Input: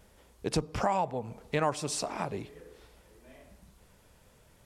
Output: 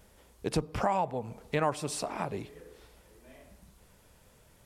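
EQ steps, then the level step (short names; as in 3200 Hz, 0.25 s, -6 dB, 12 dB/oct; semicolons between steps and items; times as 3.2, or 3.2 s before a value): high shelf 9200 Hz +4 dB; dynamic EQ 6200 Hz, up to -6 dB, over -52 dBFS, Q 1.1; 0.0 dB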